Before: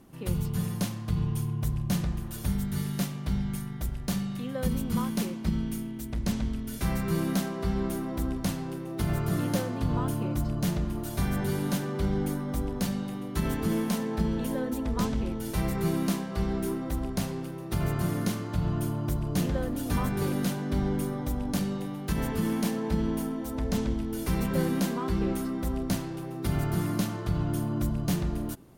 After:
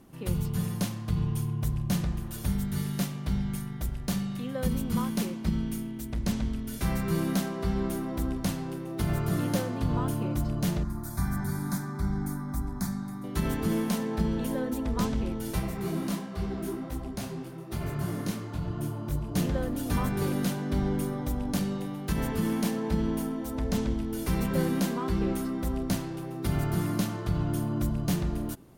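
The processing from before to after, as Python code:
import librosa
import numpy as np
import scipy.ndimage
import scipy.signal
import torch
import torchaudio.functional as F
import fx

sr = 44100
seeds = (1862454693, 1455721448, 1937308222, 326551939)

y = fx.fixed_phaser(x, sr, hz=1200.0, stages=4, at=(10.83, 13.24))
y = fx.detune_double(y, sr, cents=fx.line((15.58, 55.0), (19.34, 36.0)), at=(15.58, 19.34), fade=0.02)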